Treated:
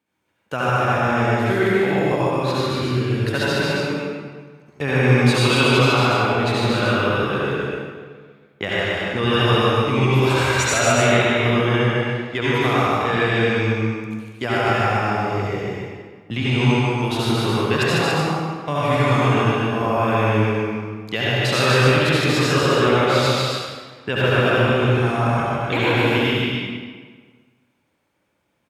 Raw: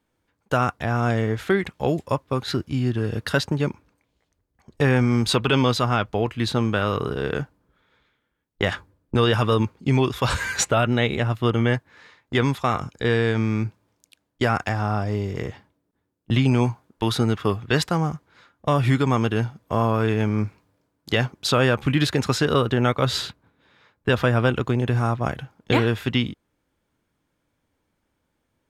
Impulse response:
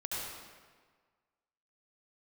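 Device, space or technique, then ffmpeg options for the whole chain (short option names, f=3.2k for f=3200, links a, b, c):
stadium PA: -filter_complex "[0:a]highpass=120,equalizer=f=2.4k:t=o:w=0.37:g=7,aecho=1:1:148.7|282.8:0.708|0.562[a];[1:a]atrim=start_sample=2205[b];[a][b]afir=irnorm=-1:irlink=0,volume=-1dB"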